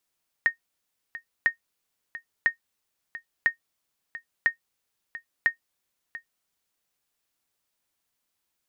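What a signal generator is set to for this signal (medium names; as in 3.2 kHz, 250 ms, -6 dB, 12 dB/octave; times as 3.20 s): sonar ping 1.85 kHz, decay 0.11 s, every 1.00 s, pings 6, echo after 0.69 s, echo -16 dB -11.5 dBFS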